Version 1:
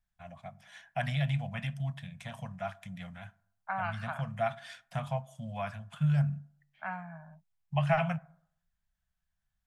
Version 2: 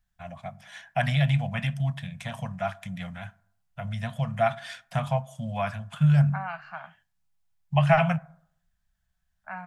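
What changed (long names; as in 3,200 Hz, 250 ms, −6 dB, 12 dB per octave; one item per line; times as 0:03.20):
first voice +7.5 dB
second voice: entry +2.65 s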